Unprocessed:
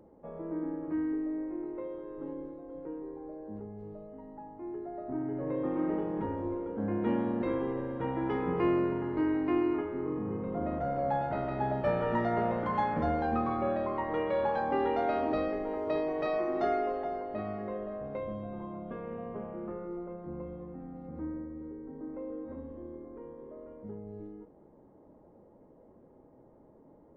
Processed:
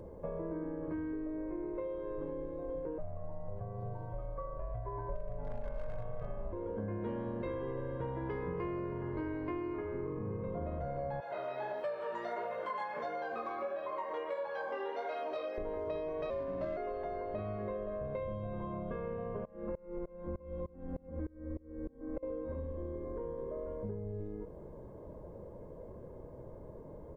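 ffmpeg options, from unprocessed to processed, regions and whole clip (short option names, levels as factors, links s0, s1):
-filter_complex "[0:a]asettb=1/sr,asplit=3[s0][s1][s2];[s0]atrim=end=2.984[s3];[s1]atrim=start=2.98:end=6.53,asetpts=PTS-STARTPTS,afade=t=in:d=0.004:c=qsin,afade=t=out:st=3.546:d=0.004:c=qsin,aecho=1:1:7.1:0.49,atrim=end_sample=156555,aeval=exprs='0.0562*(abs(mod(val(0)/0.0562+3,4)-2)-1)':c=same,aeval=exprs='val(0)*sin(2*PI*300*n/s)':c=same[s4];[s2]atrim=start=6.526[s5];[s3][s4]acrossfade=d=0.004:c1=hsin:c2=qsin[s6];[s6][s5]acrossfade=d=0.004:c1=qsin:c2=hsin,asettb=1/sr,asplit=3[s7][s8][s9];[s7]atrim=end=11.204[s10];[s8]atrim=start=11.2:end=15.58,asetpts=PTS-STARTPTS,afade=t=in:d=0.004:c=qsin,afade=t=out:st=4.376:d=0.004:c=qsin,highpass=500,aemphasis=mode=production:type=50kf,flanger=delay=18.5:depth=4.4:speed=1.5[s11];[s9]atrim=start=15.576[s12];[s10][s11]acrossfade=d=0.004:c1=hsin:c2=qsin[s13];[s13][s12]acrossfade=d=0.004:c1=qsin:c2=hsin,asettb=1/sr,asplit=3[s14][s15][s16];[s14]atrim=end=16.304[s17];[s15]atrim=start=16.3:end=16.77,asetpts=PTS-STARTPTS,afade=t=in:d=0.004:c=qsin,afade=t=out:st=0.466:d=0.004:c=qsin,aeval=exprs='sgn(val(0))*max(abs(val(0))-0.00251,0)':c=same,afreqshift=-76,adynamicsmooth=sensitivity=3.5:basefreq=1600[s18];[s16]atrim=start=16.766[s19];[s17][s18]acrossfade=d=0.004:c1=hsin:c2=qsin[s20];[s20][s19]acrossfade=d=0.004:c1=qsin:c2=hsin,asettb=1/sr,asplit=3[s21][s22][s23];[s21]atrim=end=19.454[s24];[s22]atrim=start=19.45:end=22.23,asetpts=PTS-STARTPTS,afade=t=in:d=0.004:c=qsin,afade=t=out:st=2.776:d=0.004:c=qsin,aecho=1:1:3.7:0.88,atrim=end_sample=122598,aeval=exprs='val(0)*pow(10,-27*if(lt(mod(-3.3*n/s,1),2*abs(-3.3)/1000),1-mod(-3.3*n/s,1)/(2*abs(-3.3)/1000),(mod(-3.3*n/s,1)-2*abs(-3.3)/1000)/(1-2*abs(-3.3)/1000))/20)':c=same[s25];[s23]atrim=start=22.226[s26];[s24][s25]acrossfade=d=0.004:c1=hsin:c2=qsin[s27];[s27][s26]acrossfade=d=0.004:c1=qsin:c2=hsin,lowshelf=f=160:g=9,aecho=1:1:1.9:0.56,acompressor=threshold=0.00708:ratio=6,volume=2.11"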